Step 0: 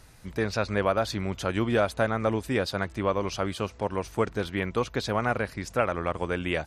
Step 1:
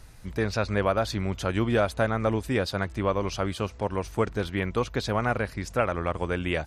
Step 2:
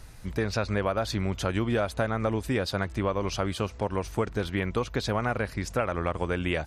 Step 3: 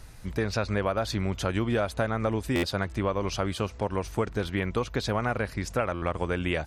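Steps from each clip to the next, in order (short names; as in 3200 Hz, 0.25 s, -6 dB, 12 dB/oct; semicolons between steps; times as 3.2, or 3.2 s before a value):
low shelf 75 Hz +9 dB
compressor 3:1, threshold -26 dBFS, peak gain reduction 6 dB; gain +2 dB
stuck buffer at 2.55/5.94, samples 512, times 6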